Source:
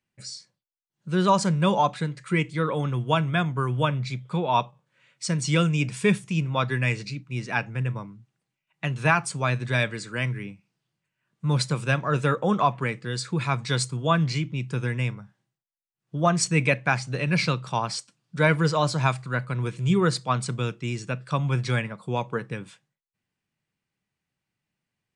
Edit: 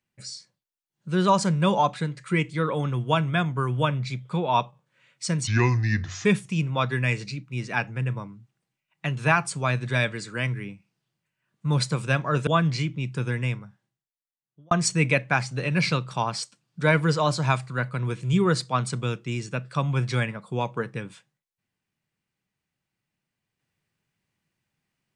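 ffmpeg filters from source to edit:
-filter_complex "[0:a]asplit=5[s0][s1][s2][s3][s4];[s0]atrim=end=5.474[s5];[s1]atrim=start=5.47:end=6.04,asetpts=PTS-STARTPTS,asetrate=32193,aresample=44100,atrim=end_sample=34434,asetpts=PTS-STARTPTS[s6];[s2]atrim=start=6.036:end=12.262[s7];[s3]atrim=start=14.028:end=16.27,asetpts=PTS-STARTPTS,afade=t=out:st=0.972:d=1.27[s8];[s4]atrim=start=16.27,asetpts=PTS-STARTPTS,afade=t=in:d=0.004:c=hsin[s9];[s5][s6]acrossfade=d=0.004:c1=hsin:c2=hsin[s10];[s10][s7]acrossfade=d=0.004:c1=hsin:c2=hsin[s11];[s8][s9]concat=n=2:v=0:a=1[s12];[s11][s12]acrossfade=d=0.004:c1=hsin:c2=hsin"

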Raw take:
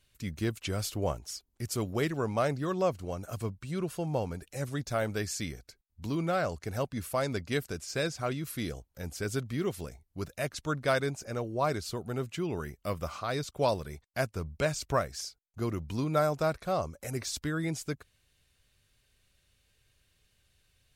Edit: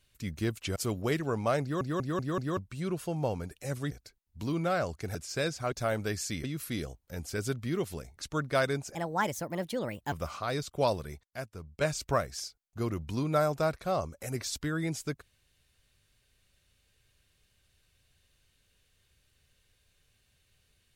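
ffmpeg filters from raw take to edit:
-filter_complex "[0:a]asplit=16[s0][s1][s2][s3][s4][s5][s6][s7][s8][s9][s10][s11][s12][s13][s14][s15];[s0]atrim=end=0.762[s16];[s1]atrim=start=1.668:end=2.722[s17];[s2]atrim=start=2.528:end=2.722[s18];[s3]atrim=start=2.528:end=2.722[s19];[s4]atrim=start=2.528:end=2.722[s20];[s5]atrim=start=2.528:end=2.722[s21];[s6]atrim=start=3.478:end=4.822[s22];[s7]atrim=start=5.538:end=6.782[s23];[s8]atrim=start=7.738:end=8.312[s24];[s9]atrim=start=4.818:end=5.542[s25];[s10]atrim=start=8.308:end=10.042[s26];[s11]atrim=start=10.498:end=11.284[s27];[s12]atrim=start=11.28:end=12.93,asetpts=PTS-STARTPTS,asetrate=62181,aresample=44100,atrim=end_sample=51606,asetpts=PTS-STARTPTS[s28];[s13]atrim=start=12.926:end=14.062[s29];[s14]atrim=start=14.058:end=14.622,asetpts=PTS-STARTPTS,volume=0.376[s30];[s15]atrim=start=14.618[s31];[s16][s17]acrossfade=d=0.004:c1=hsin:c2=hsin[s32];[s32][s18]acrossfade=d=0.004:c1=hsin:c2=hsin[s33];[s33][s19]acrossfade=d=0.004:c1=hsin:c2=hsin[s34];[s34][s20]acrossfade=d=0.004:c1=hsin:c2=hsin[s35];[s35][s21]acrossfade=d=0.004:c1=hsin:c2=hsin[s36];[s36][s22]acrossfade=d=0.004:c1=hsin:c2=hsin[s37];[s37][s23]acrossfade=d=0.004:c1=hsin:c2=hsin[s38];[s38][s24]acrossfade=d=0.004:c1=hsin:c2=hsin[s39];[s39][s25]acrossfade=d=0.004:c1=hsin:c2=hsin[s40];[s40][s26]acrossfade=d=0.004:c1=hsin:c2=hsin[s41];[s41][s27]acrossfade=d=0.004:c1=hsin:c2=hsin[s42];[s42][s28]acrossfade=d=0.004:c1=hsin:c2=hsin[s43];[s43][s29]acrossfade=d=0.004:c1=hsin:c2=hsin[s44];[s44][s30]acrossfade=d=0.004:c1=hsin:c2=hsin[s45];[s45][s31]acrossfade=d=0.004:c1=hsin:c2=hsin"

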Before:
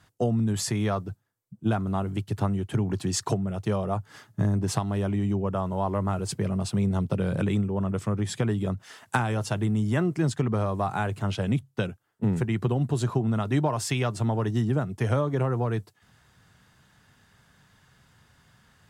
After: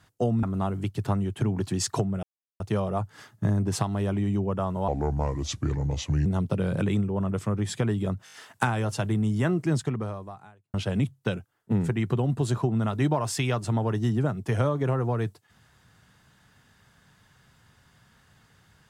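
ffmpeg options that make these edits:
-filter_complex "[0:a]asplit=10[s0][s1][s2][s3][s4][s5][s6][s7][s8][s9];[s0]atrim=end=0.432[s10];[s1]atrim=start=1.758:end=3.56,asetpts=PTS-STARTPTS,afade=t=out:st=1.798:d=0.004:c=hsin,apad=pad_dur=0.37[s11];[s2]atrim=start=3.56:end=5.844,asetpts=PTS-STARTPTS,afade=t=in:d=0.004:c=hsin[s12];[s3]atrim=start=5.84:end=6.86,asetpts=PTS-STARTPTS,asetrate=32634,aresample=44100,atrim=end_sample=60786,asetpts=PTS-STARTPTS[s13];[s4]atrim=start=6.856:end=8.872[s14];[s5]atrim=start=8.848:end=8.872[s15];[s6]atrim=start=8.848:end=8.872[s16];[s7]atrim=start=8.848:end=8.872[s17];[s8]atrim=start=8.848:end=11.26,asetpts=PTS-STARTPTS,afade=t=out:st=1.442:d=0.97:c=qua[s18];[s9]atrim=start=11.26,asetpts=PTS-STARTPTS,afade=t=in:d=0.004:c=hsin[s19];[s11][s12]concat=n=2:v=0:a=1[s20];[s10][s20]acrossfade=d=0.004:c1=hsin:c2=hsin[s21];[s21][s13]acrossfade=d=0.004:c1=hsin:c2=hsin[s22];[s22][s14]acrossfade=d=0.004:c1=hsin:c2=hsin[s23];[s23][s15]acrossfade=d=0.004:c1=hsin:c2=hsin[s24];[s24][s16]acrossfade=d=0.004:c1=hsin:c2=hsin[s25];[s25][s17]acrossfade=d=0.004:c1=hsin:c2=hsin[s26];[s18][s19]concat=n=2:v=0:a=1[s27];[s26][s27]acrossfade=d=0.004:c1=hsin:c2=hsin"

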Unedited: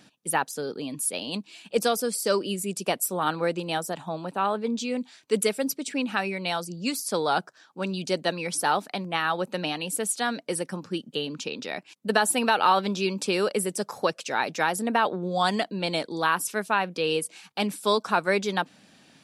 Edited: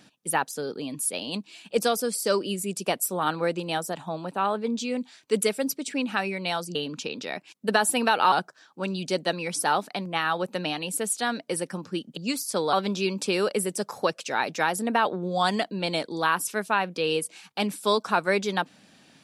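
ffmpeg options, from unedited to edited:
-filter_complex "[0:a]asplit=5[s0][s1][s2][s3][s4];[s0]atrim=end=6.752[s5];[s1]atrim=start=11.158:end=12.732[s6];[s2]atrim=start=7.308:end=11.162[s7];[s3]atrim=start=6.748:end=7.312[s8];[s4]atrim=start=12.728[s9];[s5][s6]acrossfade=d=0.004:c1=hsin:c2=hsin[s10];[s10][s7]acrossfade=d=0.004:c1=hsin:c2=hsin[s11];[s11][s8]acrossfade=d=0.004:c1=hsin:c2=hsin[s12];[s12][s9]acrossfade=d=0.004:c1=hsin:c2=hsin"

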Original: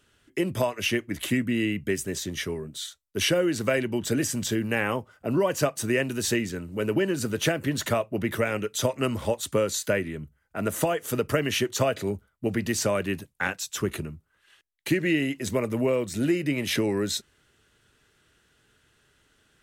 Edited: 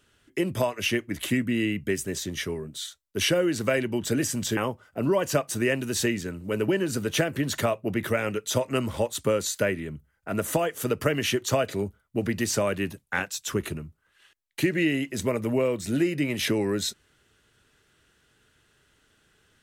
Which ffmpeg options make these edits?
-filter_complex "[0:a]asplit=2[s0][s1];[s0]atrim=end=4.572[s2];[s1]atrim=start=4.848[s3];[s2][s3]acrossfade=d=0.004:c1=hsin:c2=hsin"

